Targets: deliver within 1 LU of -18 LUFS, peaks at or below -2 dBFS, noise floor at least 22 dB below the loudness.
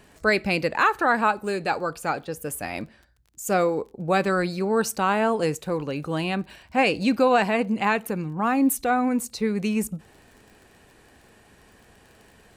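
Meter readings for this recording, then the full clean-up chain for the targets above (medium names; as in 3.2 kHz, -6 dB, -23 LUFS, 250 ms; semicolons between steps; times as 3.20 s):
tick rate 29 per s; loudness -24.0 LUFS; peak level -9.0 dBFS; loudness target -18.0 LUFS
-> de-click; trim +6 dB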